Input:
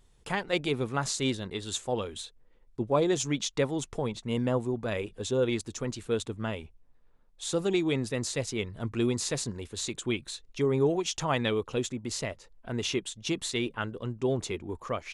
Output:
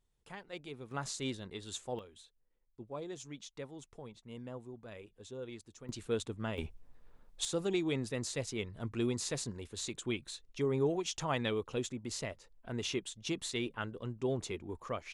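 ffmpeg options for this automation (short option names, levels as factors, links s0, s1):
-af "asetnsamples=n=441:p=0,asendcmd='0.91 volume volume -9dB;1.99 volume volume -17.5dB;5.89 volume volume -5dB;6.58 volume volume 5dB;7.45 volume volume -6dB',volume=0.141"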